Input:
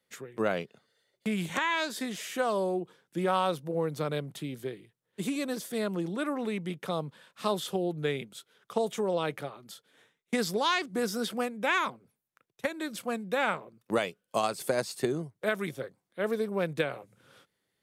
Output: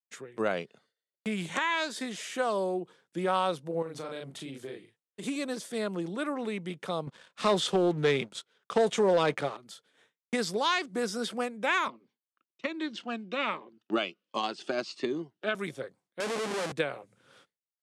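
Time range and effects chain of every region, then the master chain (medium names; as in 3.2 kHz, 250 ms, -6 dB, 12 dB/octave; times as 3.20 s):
3.82–5.24 s: doubling 37 ms -3.5 dB + compression 5:1, threshold -33 dBFS + bass shelf 150 Hz -5 dB
7.07–9.57 s: low-pass 7.9 kHz + waveshaping leveller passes 2
11.88–15.55 s: cabinet simulation 220–5500 Hz, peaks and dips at 230 Hz +3 dB, 330 Hz +7 dB, 490 Hz -6 dB, 1.2 kHz +4 dB, 2.9 kHz +8 dB + Shepard-style phaser falling 1.3 Hz
16.20–16.72 s: hum notches 50/100/150/200/250/300 Hz + Schmitt trigger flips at -43 dBFS + high-pass 230 Hz
whole clip: low-pass 9.9 kHz 24 dB/octave; expander -59 dBFS; bass shelf 130 Hz -8.5 dB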